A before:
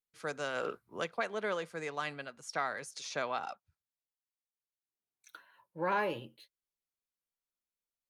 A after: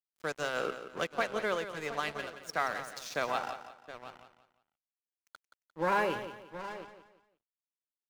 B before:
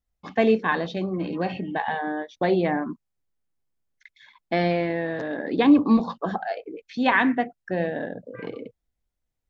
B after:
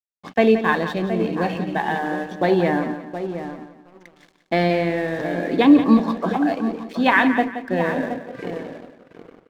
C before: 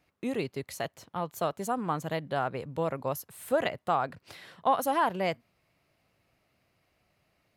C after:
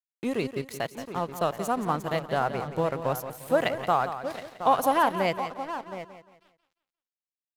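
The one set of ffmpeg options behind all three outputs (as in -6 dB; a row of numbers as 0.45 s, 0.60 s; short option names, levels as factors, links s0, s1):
-filter_complex "[0:a]asplit=2[s0][s1];[s1]adelay=720,lowpass=f=1500:p=1,volume=0.355,asplit=2[s2][s3];[s3]adelay=720,lowpass=f=1500:p=1,volume=0.17,asplit=2[s4][s5];[s5]adelay=720,lowpass=f=1500:p=1,volume=0.17[s6];[s2][s4][s6]amix=inputs=3:normalize=0[s7];[s0][s7]amix=inputs=2:normalize=0,aeval=exprs='sgn(val(0))*max(abs(val(0))-0.00447,0)':c=same,asplit=2[s8][s9];[s9]aecho=0:1:175|350|525:0.282|0.0902|0.0289[s10];[s8][s10]amix=inputs=2:normalize=0,volume=1.58"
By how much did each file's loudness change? +2.5 LU, +4.0 LU, +3.5 LU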